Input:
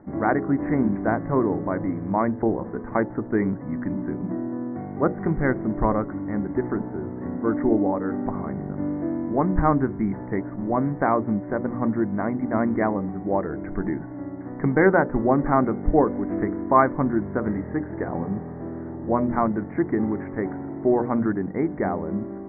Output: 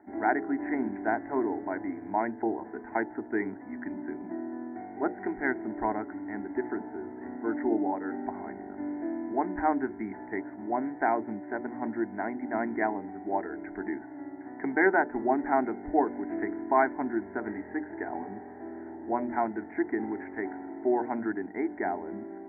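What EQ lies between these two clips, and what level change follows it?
high-pass filter 540 Hz 6 dB per octave
phaser with its sweep stopped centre 780 Hz, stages 8
0.0 dB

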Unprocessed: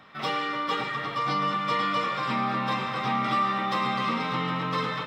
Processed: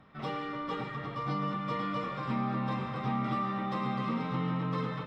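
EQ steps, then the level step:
spectral tilt −3.5 dB per octave
high-shelf EQ 6,800 Hz +5.5 dB
−8.5 dB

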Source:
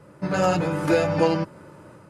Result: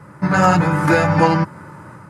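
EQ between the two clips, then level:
high-pass filter 140 Hz 6 dB per octave
bass and treble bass +14 dB, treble +5 dB
flat-topped bell 1,300 Hz +10.5 dB
+1.0 dB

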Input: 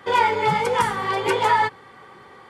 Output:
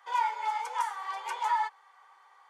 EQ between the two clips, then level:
four-pole ladder high-pass 760 Hz, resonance 50%
parametric band 6,300 Hz +7 dB 0.43 octaves
high-shelf EQ 8,500 Hz +6 dB
−7.0 dB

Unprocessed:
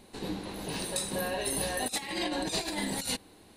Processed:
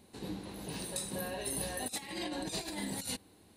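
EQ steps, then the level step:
high-pass filter 57 Hz
low-shelf EQ 240 Hz +7 dB
high-shelf EQ 8,000 Hz +6 dB
−8.0 dB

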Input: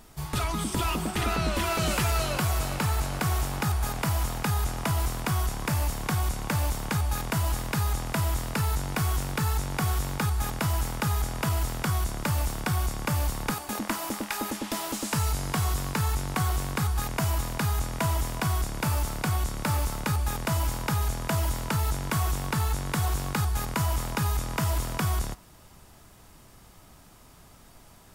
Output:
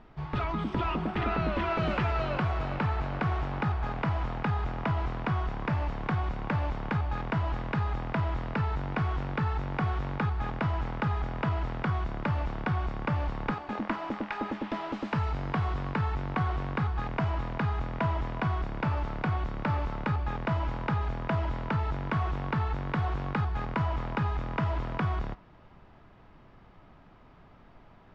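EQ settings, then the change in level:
low-pass filter 2,600 Hz 12 dB per octave
high-frequency loss of the air 160 metres
parametric band 64 Hz −4.5 dB 1.2 octaves
0.0 dB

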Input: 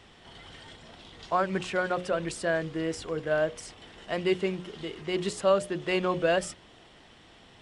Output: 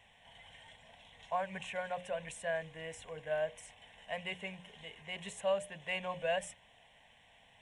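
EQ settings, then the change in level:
low-shelf EQ 440 Hz −8 dB
phaser with its sweep stopped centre 1,300 Hz, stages 6
−4.0 dB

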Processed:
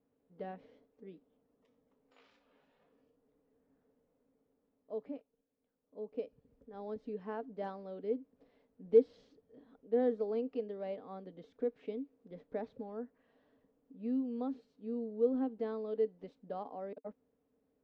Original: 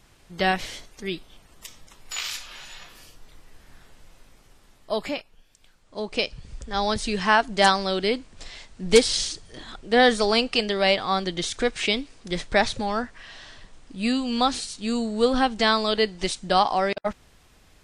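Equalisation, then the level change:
pair of resonant band-passes 350 Hz, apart 0.72 octaves
high-frequency loss of the air 110 metres
−7.0 dB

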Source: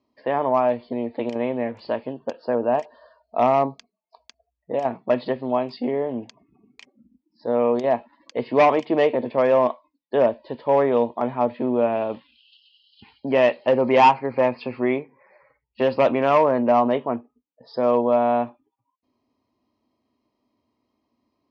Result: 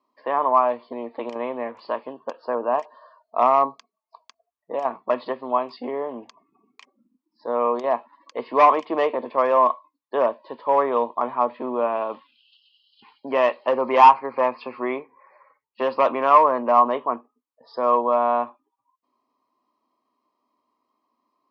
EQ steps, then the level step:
high-pass filter 290 Hz 12 dB per octave
parametric band 1,100 Hz +14.5 dB 0.48 octaves
−3.5 dB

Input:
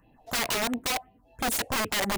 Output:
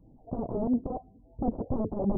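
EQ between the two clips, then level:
Gaussian smoothing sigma 15 samples
+6.5 dB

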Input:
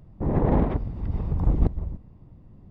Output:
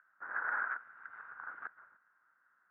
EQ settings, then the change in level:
flat-topped band-pass 1,500 Hz, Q 5.7
+17.0 dB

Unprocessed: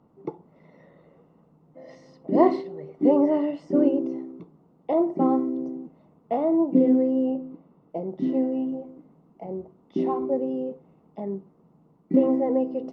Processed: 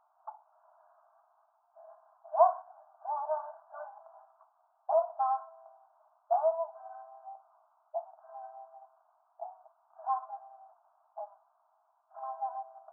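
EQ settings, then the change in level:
linear-phase brick-wall band-pass 620–1,700 Hz
0.0 dB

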